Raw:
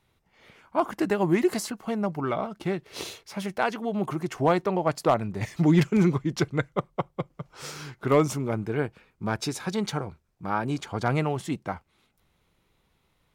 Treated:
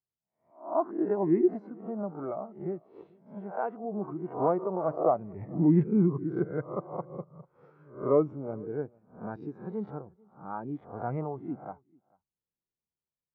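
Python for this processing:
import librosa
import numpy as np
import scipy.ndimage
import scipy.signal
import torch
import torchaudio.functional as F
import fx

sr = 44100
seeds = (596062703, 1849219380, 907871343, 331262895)

p1 = fx.spec_swells(x, sr, rise_s=0.59)
p2 = scipy.signal.sosfilt(scipy.signal.butter(2, 1200.0, 'lowpass', fs=sr, output='sos'), p1)
p3 = fx.low_shelf(p2, sr, hz=100.0, db=-10.0)
p4 = p3 + fx.echo_single(p3, sr, ms=443, db=-18.5, dry=0)
p5 = fx.spectral_expand(p4, sr, expansion=1.5)
y = F.gain(torch.from_numpy(p5), -4.0).numpy()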